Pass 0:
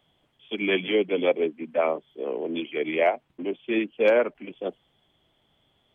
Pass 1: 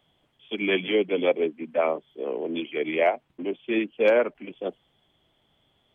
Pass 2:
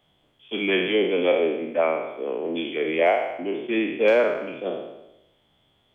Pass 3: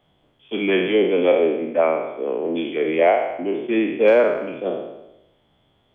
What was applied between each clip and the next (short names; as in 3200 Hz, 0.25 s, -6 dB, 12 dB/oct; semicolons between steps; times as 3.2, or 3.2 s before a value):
nothing audible
spectral trails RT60 0.94 s
high shelf 2300 Hz -9 dB; gain +4.5 dB